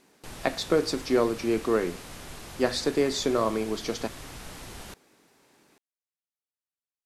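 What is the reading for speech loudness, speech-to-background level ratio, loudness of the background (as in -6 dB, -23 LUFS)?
-27.5 LUFS, 15.0 dB, -42.5 LUFS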